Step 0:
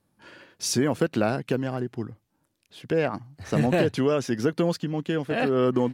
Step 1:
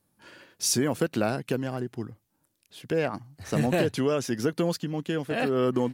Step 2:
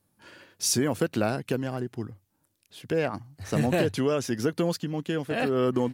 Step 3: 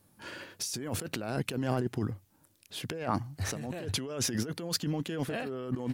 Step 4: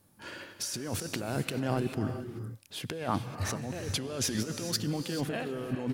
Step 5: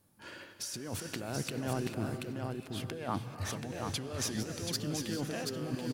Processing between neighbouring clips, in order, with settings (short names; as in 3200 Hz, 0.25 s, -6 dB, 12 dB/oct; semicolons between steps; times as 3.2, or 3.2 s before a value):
high shelf 6900 Hz +10.5 dB; gain -2.5 dB
bell 96 Hz +7 dB 0.22 oct
negative-ratio compressor -34 dBFS, ratio -1
reverb, pre-delay 3 ms, DRR 8 dB
echo 0.731 s -4.5 dB; gain -4.5 dB